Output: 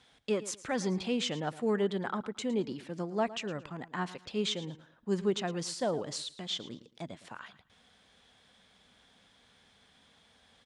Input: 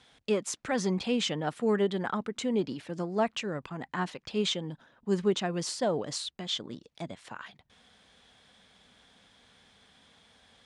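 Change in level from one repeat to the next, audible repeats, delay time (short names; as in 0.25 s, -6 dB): -11.5 dB, 2, 0.111 s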